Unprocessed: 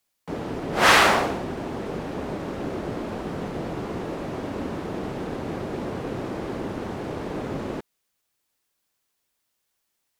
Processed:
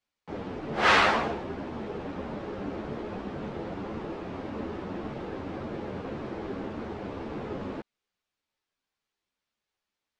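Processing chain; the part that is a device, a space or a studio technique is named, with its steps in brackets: string-machine ensemble chorus (ensemble effect; LPF 4400 Hz 12 dB/oct); gain -2 dB

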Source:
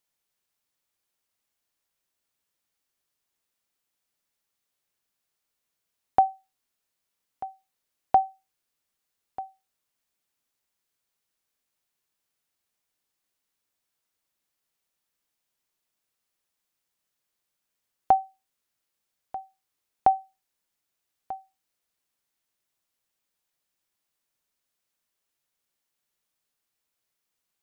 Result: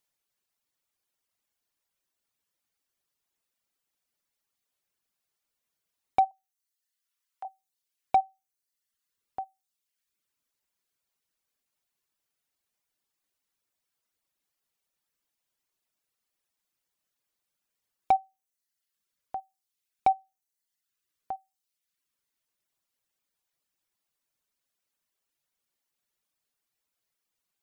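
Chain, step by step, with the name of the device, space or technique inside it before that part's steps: clipper into limiter (hard clip -11.5 dBFS, distortion -21 dB; limiter -14.5 dBFS, peak gain reduction 3 dB); reverb removal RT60 0.95 s; 6.31–7.45 HPF 950 Hz

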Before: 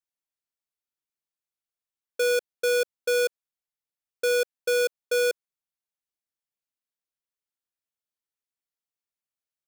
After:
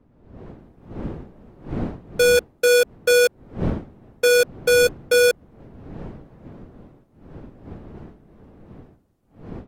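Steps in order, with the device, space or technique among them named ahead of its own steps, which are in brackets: smartphone video outdoors (wind noise 290 Hz -43 dBFS; AGC gain up to 14 dB; gain -6 dB; AAC 48 kbps 44100 Hz)

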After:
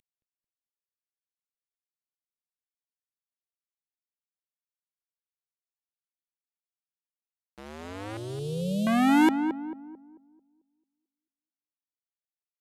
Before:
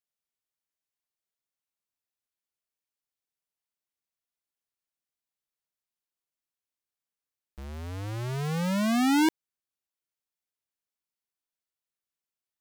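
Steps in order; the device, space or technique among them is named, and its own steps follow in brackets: early wireless headset (HPF 240 Hz 12 dB/oct; CVSD 64 kbps); 8.17–8.87 inverse Chebyshev band-stop 820–2100 Hz, stop band 40 dB; darkening echo 0.221 s, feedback 40%, low-pass 1100 Hz, level -7 dB; gain +5.5 dB

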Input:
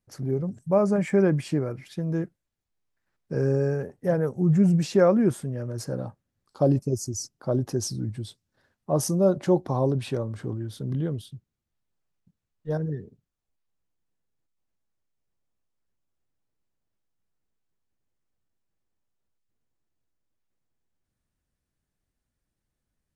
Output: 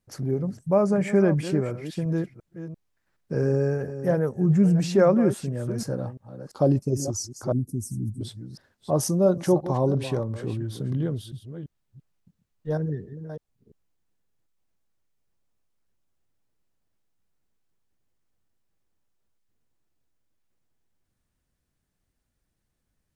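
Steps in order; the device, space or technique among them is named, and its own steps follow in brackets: reverse delay 0.343 s, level -12.5 dB; 7.52–8.21 Chebyshev band-stop 260–8600 Hz, order 3; parallel compression (in parallel at -5 dB: compressor, threshold -38 dBFS, peak gain reduction 21.5 dB)

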